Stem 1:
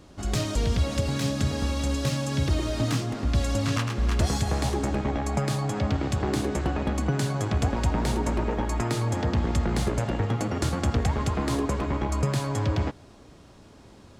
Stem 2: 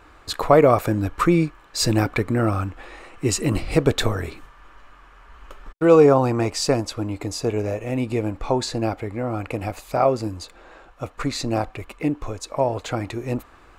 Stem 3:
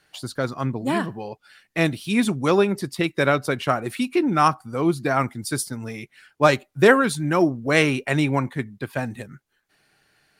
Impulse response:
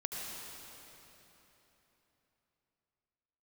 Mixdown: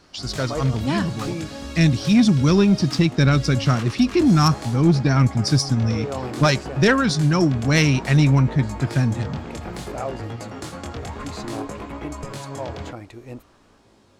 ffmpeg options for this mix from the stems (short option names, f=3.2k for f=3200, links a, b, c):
-filter_complex "[0:a]flanger=delay=17.5:depth=7.2:speed=0.58,lowshelf=f=170:g=-8,volume=-0.5dB[a];[1:a]volume=-11dB[b];[2:a]asubboost=boost=11.5:cutoff=190,lowpass=f=5.4k:t=q:w=5.2,volume=-0.5dB,asplit=2[c][d];[d]apad=whole_len=607784[e];[b][e]sidechaincompress=threshold=-28dB:ratio=8:attack=16:release=238[f];[a][f][c]amix=inputs=3:normalize=0,asoftclip=type=tanh:threshold=-7dB"